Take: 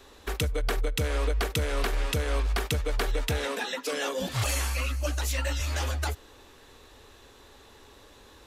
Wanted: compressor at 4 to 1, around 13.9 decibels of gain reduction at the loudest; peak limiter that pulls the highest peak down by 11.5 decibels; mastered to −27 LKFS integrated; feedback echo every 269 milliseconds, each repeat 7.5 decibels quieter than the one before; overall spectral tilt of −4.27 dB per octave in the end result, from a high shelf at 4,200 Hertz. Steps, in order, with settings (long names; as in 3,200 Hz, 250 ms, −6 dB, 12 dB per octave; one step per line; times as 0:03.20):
high-shelf EQ 4,200 Hz −4 dB
downward compressor 4 to 1, threshold −41 dBFS
brickwall limiter −39.5 dBFS
repeating echo 269 ms, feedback 42%, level −7.5 dB
level +21.5 dB